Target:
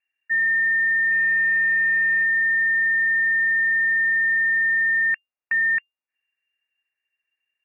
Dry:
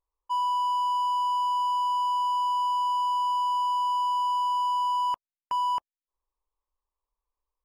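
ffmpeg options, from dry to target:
-filter_complex "[0:a]asplit=3[a][b][c];[a]afade=t=out:st=1.1:d=0.02[d];[b]acrusher=bits=3:mode=log:mix=0:aa=0.000001,afade=t=in:st=1.1:d=0.02,afade=t=out:st=2.23:d=0.02[e];[c]afade=t=in:st=2.23:d=0.02[f];[d][e][f]amix=inputs=3:normalize=0,lowpass=f=2.4k:t=q:w=0.5098,lowpass=f=2.4k:t=q:w=0.6013,lowpass=f=2.4k:t=q:w=0.9,lowpass=f=2.4k:t=q:w=2.563,afreqshift=-2800,volume=6dB"

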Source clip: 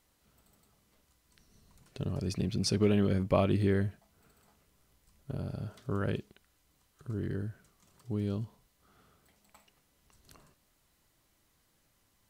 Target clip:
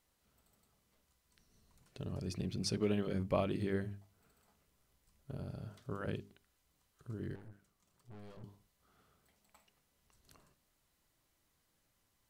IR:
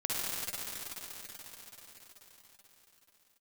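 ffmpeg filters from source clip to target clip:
-filter_complex "[0:a]bandreject=f=50:t=h:w=6,bandreject=f=100:t=h:w=6,bandreject=f=150:t=h:w=6,bandreject=f=200:t=h:w=6,bandreject=f=250:t=h:w=6,bandreject=f=300:t=h:w=6,bandreject=f=350:t=h:w=6,bandreject=f=400:t=h:w=6,asettb=1/sr,asplit=3[a][b][c];[a]atrim=end=7.354[d];[b]atrim=start=7.35:end=8.44,asetpts=PTS-STARTPTS,afade=t=in:d=0.004:c=qsin,afade=t=out:st=1.086:d=0.004:c=qsin,aeval=exprs='(tanh(178*val(0)+0.75)-tanh(0.75))/178':c=same[e];[c]atrim=start=8.436[f];[d][e]acrossfade=d=0.004:c1=hsin:c2=qsin[g];[g][f]acrossfade=d=0.004:c1=qsin:c2=hsin,volume=-6dB"

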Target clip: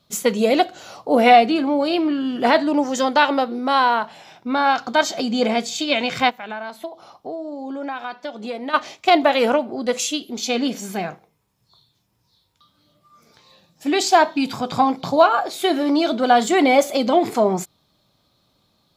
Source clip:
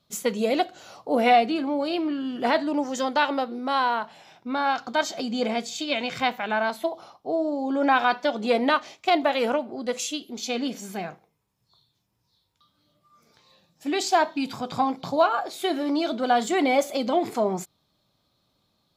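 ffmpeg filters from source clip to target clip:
-filter_complex "[0:a]asplit=3[a][b][c];[a]afade=t=out:st=6.29:d=0.02[d];[b]acompressor=threshold=-38dB:ratio=3,afade=t=in:st=6.29:d=0.02,afade=t=out:st=8.73:d=0.02[e];[c]afade=t=in:st=8.73:d=0.02[f];[d][e][f]amix=inputs=3:normalize=0,volume=6.5dB"

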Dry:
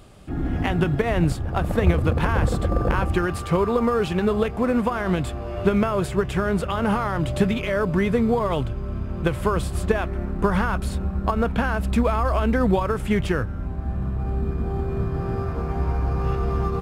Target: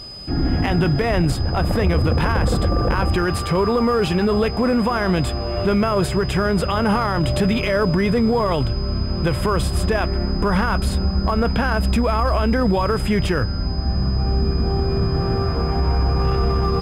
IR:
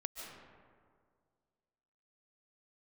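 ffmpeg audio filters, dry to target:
-af "acontrast=54,aeval=exprs='val(0)+0.02*sin(2*PI*5000*n/s)':c=same,alimiter=limit=-11dB:level=0:latency=1:release=12"

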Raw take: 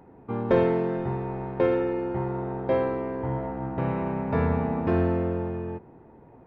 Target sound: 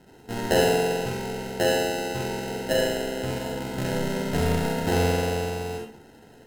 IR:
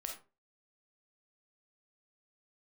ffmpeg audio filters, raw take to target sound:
-filter_complex "[0:a]acrusher=samples=38:mix=1:aa=0.000001[a];[1:a]atrim=start_sample=2205,asetrate=31311,aresample=44100[b];[a][b]afir=irnorm=-1:irlink=0"

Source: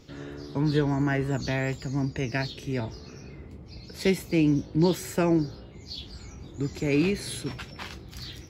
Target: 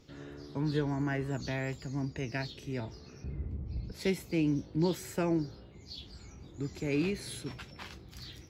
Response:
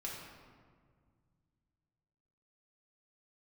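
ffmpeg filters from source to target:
-filter_complex "[0:a]asettb=1/sr,asplit=3[a][b][c];[a]atrim=end=3.244[d];[b]atrim=start=3.24:end=3.92,asetpts=PTS-STARTPTS,afade=t=in:d=0.004:c=qsin,afade=t=out:st=0.676:d=0.004:c=qsin,aemphasis=mode=reproduction:type=riaa[e];[c]atrim=start=3.916[f];[d][e]acrossfade=d=0.004:c1=hsin:c2=qsin[g];[g][f]acrossfade=d=0.004:c1=qsin:c2=hsin,volume=-7dB"

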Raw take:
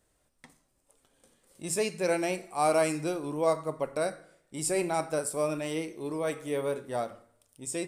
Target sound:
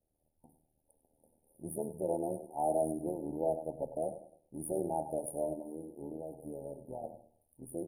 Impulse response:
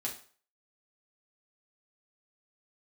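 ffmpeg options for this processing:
-filter_complex "[0:a]bandreject=f=50:t=h:w=6,bandreject=f=100:t=h:w=6,bandreject=f=150:t=h:w=6,asplit=2[a][b];[b]asoftclip=type=tanh:threshold=-32dB,volume=-8dB[c];[a][c]amix=inputs=2:normalize=0,equalizer=f=440:t=o:w=0.22:g=-5.5,asettb=1/sr,asplit=3[d][e][f];[d]atrim=end=5.534[g];[e]atrim=start=5.53:end=7.04,asetpts=PTS-STARTPTS,afade=t=in:d=0.004:c=qsin,afade=t=out:st=1.506:d=0.004:c=qsin,acompressor=threshold=-34dB:ratio=6[h];[f]atrim=start=7.036[i];[g][h]acrossfade=d=0.004:c1=hsin:c2=qsin[j];[j][i]acrossfade=d=0.004:c1=qsin:c2=hsin,afftfilt=real='re*(1-between(b*sr/4096,900,9300))':imag='im*(1-between(b*sr/4096,900,9300))':win_size=4096:overlap=0.75,aecho=1:1:100|200|300:0.224|0.0627|0.0176,tremolo=f=78:d=0.788,dynaudnorm=f=170:g=3:m=6dB,volume=-9dB"

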